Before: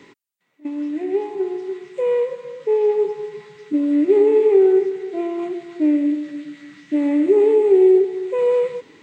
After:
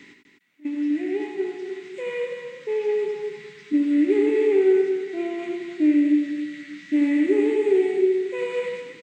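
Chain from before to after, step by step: graphic EQ 125/250/500/1000/2000 Hz -7/+4/-10/-9/+6 dB; on a send: multi-tap echo 79/95/250 ms -10/-8/-7.5 dB

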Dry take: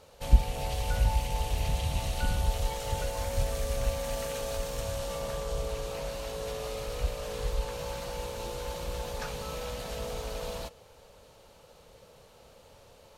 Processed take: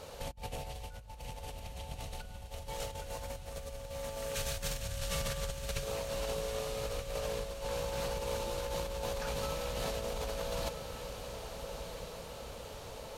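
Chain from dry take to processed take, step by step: 4.35–5.83 s: high-order bell 500 Hz -11 dB 2.6 oct; compressor with a negative ratio -41 dBFS, ratio -1; echo that smears into a reverb 1324 ms, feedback 45%, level -8 dB

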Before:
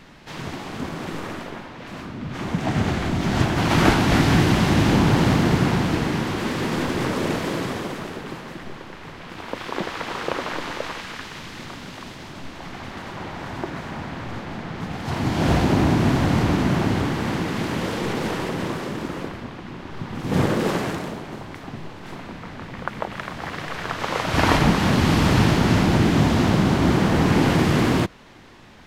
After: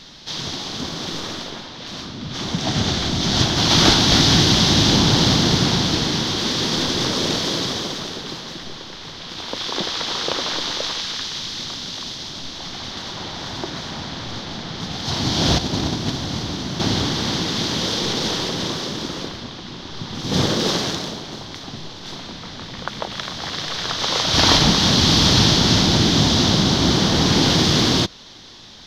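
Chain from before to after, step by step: 15.58–16.80 s: gate -16 dBFS, range -8 dB; high-order bell 4.5 kHz +16 dB 1.2 oct

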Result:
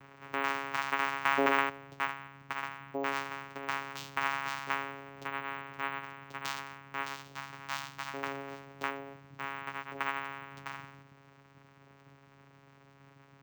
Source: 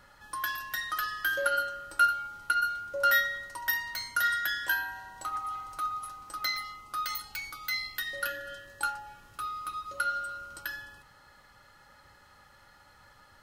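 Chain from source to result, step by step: peaking EQ 1.5 kHz +4 dB 2.8 oct, from 1.69 s -9 dB, from 3.31 s -2.5 dB; saturation -20.5 dBFS, distortion -17 dB; vocoder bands 4, saw 138 Hz; careless resampling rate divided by 2×, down none, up hold

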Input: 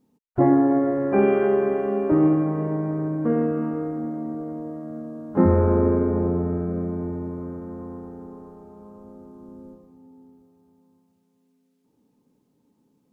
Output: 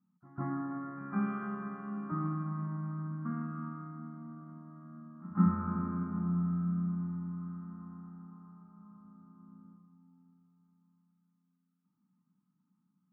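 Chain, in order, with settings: two resonant band-passes 480 Hz, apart 2.8 oct; pre-echo 153 ms -21 dB

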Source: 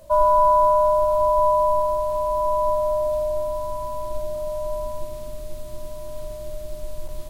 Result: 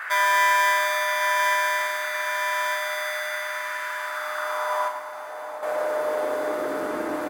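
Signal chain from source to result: self-modulated delay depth 0.08 ms; in parallel at -7 dB: sample-and-hold 32×; on the sum: band noise 140–1600 Hz -35 dBFS; high-pass sweep 1.7 kHz -> 290 Hz, 3.86–7.00 s; 4.88–5.63 s: gate -26 dBFS, range -9 dB; on a send: delay 678 ms -15 dB; on the sum: FDN reverb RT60 0.78 s, low-frequency decay 1.5×, high-frequency decay 0.85×, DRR 3 dB

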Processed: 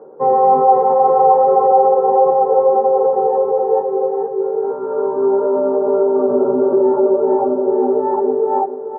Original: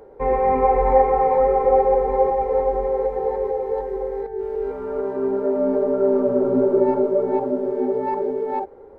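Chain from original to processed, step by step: peak limiter -14 dBFS, peak gain reduction 10 dB; elliptic band-pass 150–1300 Hz, stop band 40 dB; doubling 13 ms -4 dB; dynamic bell 850 Hz, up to +7 dB, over -38 dBFS, Q 2.6; thinning echo 435 ms, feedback 46%, high-pass 340 Hz, level -8 dB; trim +4.5 dB

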